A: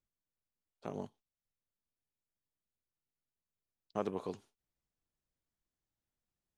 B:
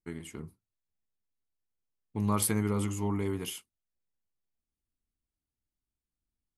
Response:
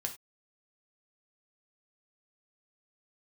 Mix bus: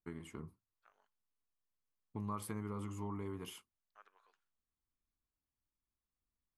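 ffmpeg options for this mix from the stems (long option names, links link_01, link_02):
-filter_complex "[0:a]highpass=frequency=1500:width_type=q:width=3.4,volume=-19.5dB[link_01];[1:a]equalizer=frequency=1100:width=3.2:gain=8.5,volume=-4dB[link_02];[link_01][link_02]amix=inputs=2:normalize=0,highshelf=frequency=3000:gain=-8.5,acompressor=threshold=-42dB:ratio=2.5"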